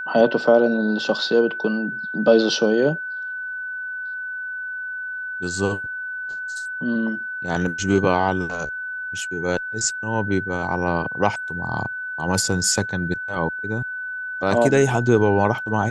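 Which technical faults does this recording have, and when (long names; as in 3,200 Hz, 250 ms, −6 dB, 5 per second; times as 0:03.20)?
whistle 1,500 Hz −27 dBFS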